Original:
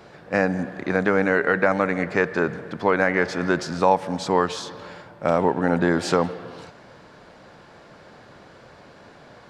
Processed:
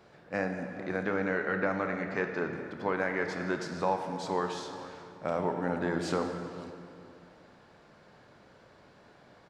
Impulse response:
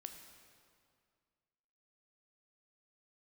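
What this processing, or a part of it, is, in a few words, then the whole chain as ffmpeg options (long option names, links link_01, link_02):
stairwell: -filter_complex "[0:a]asettb=1/sr,asplit=3[link_01][link_02][link_03];[link_01]atrim=end=1.034[link_04];[link_02]atrim=start=1.03:end=2.53,asetpts=PTS-STARTPTS,afade=type=in:duration=0.004:curve=qsin,afade=type=out:start_time=1.496:duration=0.004:curve=qsin,lowpass=frequency=7000:width=0.5412,lowpass=frequency=7000:width=1.3066[link_05];[link_03]atrim=start=2.526[link_06];[link_04][link_05]acrossfade=duration=0.004:curve1=hsin:curve2=qsin[link_07];[link_07][link_06]acrossfade=duration=0.004:curve1=qsin:curve2=hsin[link_08];[1:a]atrim=start_sample=2205[link_09];[link_08][link_09]afir=irnorm=-1:irlink=0,asplit=2[link_10][link_11];[link_11]adelay=427,lowpass=frequency=900:poles=1,volume=-14dB,asplit=2[link_12][link_13];[link_13]adelay=427,lowpass=frequency=900:poles=1,volume=0.38,asplit=2[link_14][link_15];[link_15]adelay=427,lowpass=frequency=900:poles=1,volume=0.38,asplit=2[link_16][link_17];[link_17]adelay=427,lowpass=frequency=900:poles=1,volume=0.38[link_18];[link_10][link_12][link_14][link_16][link_18]amix=inputs=5:normalize=0,volume=-5.5dB"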